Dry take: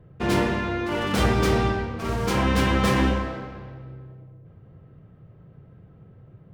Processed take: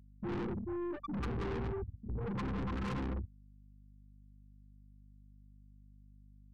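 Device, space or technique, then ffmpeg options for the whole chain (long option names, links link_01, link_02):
valve amplifier with mains hum: -filter_complex "[0:a]asettb=1/sr,asplit=3[link_01][link_02][link_03];[link_01]atrim=end=2.294[link_04];[link_02]atrim=start=2.29:end=2.75,asetpts=PTS-STARTPTS,afade=type=in:duration=0.004:curve=qsin,afade=type=out:start_time=0.456:duration=0.004:curve=qsin,highpass=68[link_05];[link_03]atrim=start=2.746[link_06];[link_04][link_05]acrossfade=duration=0.004:curve1=hsin:curve2=qsin[link_07];[link_07][link_06]acrossfade=duration=0.004:curve1=qsin:curve2=hsin,afftfilt=real='re*gte(hypot(re,im),0.316)':imag='im*gte(hypot(re,im),0.316)':win_size=1024:overlap=0.75,aeval=exprs='(tanh(63.1*val(0)+0.2)-tanh(0.2))/63.1':channel_layout=same,aeval=exprs='val(0)+0.00126*(sin(2*PI*50*n/s)+sin(2*PI*2*50*n/s)/2+sin(2*PI*3*50*n/s)/3+sin(2*PI*4*50*n/s)/4+sin(2*PI*5*50*n/s)/5)':channel_layout=same,equalizer=frequency=620:width_type=o:width=0.33:gain=-12,volume=1dB"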